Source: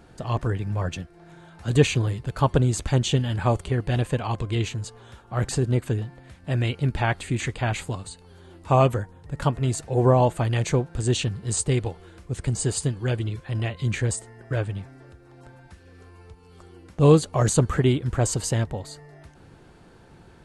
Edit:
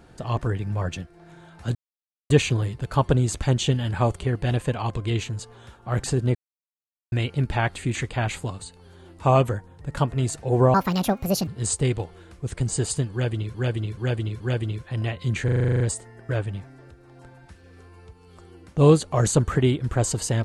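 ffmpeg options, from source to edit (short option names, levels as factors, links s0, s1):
-filter_complex "[0:a]asplit=18[s0][s1][s2][s3][s4][s5][s6][s7][s8][s9][s10][s11][s12][s13][s14][s15][s16][s17];[s0]atrim=end=1.75,asetpts=PTS-STARTPTS,afade=t=out:st=1.746:d=0.004:c=hsin,apad=pad_dur=0.55[s18];[s1]atrim=start=1.75:end=5.8,asetpts=PTS-STARTPTS,afade=t=in:d=0.004:c=hsin,afade=t=out:st=4.046:d=0.004:c=hsin[s19];[s2]atrim=start=5.8:end=6.57,asetpts=PTS-STARTPTS,volume=0[s20];[s3]atrim=start=6.57:end=10.194,asetpts=PTS-STARTPTS,afade=t=in:d=0.004:c=hsin[s21];[s4]atrim=start=10.19:end=11.34,asetpts=PTS-STARTPTS,asetrate=69237,aresample=44100[s22];[s5]atrim=start=11.336:end=13.412[s23];[s6]atrim=start=12.978:end=13.412[s24];[s7]atrim=start=12.978:end=13.412[s25];[s8]atrim=start=12.978:end=14.062[s26];[s9]atrim=start=14.018:end=14.062[s27];[s10]atrim=start=14.018:end=14.062[s28];[s11]atrim=start=14.018:end=14.062[s29];[s12]atrim=start=14.018:end=14.062[s30];[s13]atrim=start=14.018:end=14.062[s31];[s14]atrim=start=14.018:end=14.062[s32];[s15]atrim=start=14.018:end=14.062[s33];[s16]atrim=start=14.018:end=14.062[s34];[s17]atrim=start=14.018[s35];[s18][s19][s20][s21]concat=n=4:v=0:a=1[s36];[s36][s22]acrossfade=d=0.004:c1=hsin:c2=hsin[s37];[s37][s23]acrossfade=d=0.004:c1=hsin:c2=hsin[s38];[s38][s24]acrossfade=d=0.004:c1=hsin:c2=hsin[s39];[s39][s25]acrossfade=d=0.004:c1=hsin:c2=hsin[s40];[s40][s26]acrossfade=d=0.004:c1=hsin:c2=hsin[s41];[s41][s27]acrossfade=d=0.004:c1=hsin:c2=hsin[s42];[s42][s28]acrossfade=d=0.004:c1=hsin:c2=hsin[s43];[s43][s29]acrossfade=d=0.004:c1=hsin:c2=hsin[s44];[s44][s30]acrossfade=d=0.004:c1=hsin:c2=hsin[s45];[s45][s31]acrossfade=d=0.004:c1=hsin:c2=hsin[s46];[s46][s32]acrossfade=d=0.004:c1=hsin:c2=hsin[s47];[s47][s33]acrossfade=d=0.004:c1=hsin:c2=hsin[s48];[s48][s34]acrossfade=d=0.004:c1=hsin:c2=hsin[s49];[s49][s35]acrossfade=d=0.004:c1=hsin:c2=hsin"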